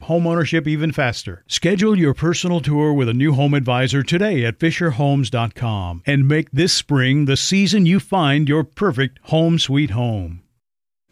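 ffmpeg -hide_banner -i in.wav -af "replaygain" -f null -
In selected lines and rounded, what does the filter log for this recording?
track_gain = -0.7 dB
track_peak = 0.351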